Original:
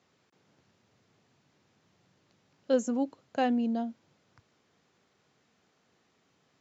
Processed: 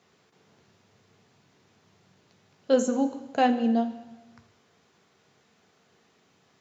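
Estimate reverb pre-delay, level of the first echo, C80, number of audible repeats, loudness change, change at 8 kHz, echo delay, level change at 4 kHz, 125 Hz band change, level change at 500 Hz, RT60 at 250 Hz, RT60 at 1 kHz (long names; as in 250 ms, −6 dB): 3 ms, no echo audible, 14.0 dB, no echo audible, +5.0 dB, can't be measured, no echo audible, +6.5 dB, can't be measured, +5.0 dB, 1.0 s, 1.1 s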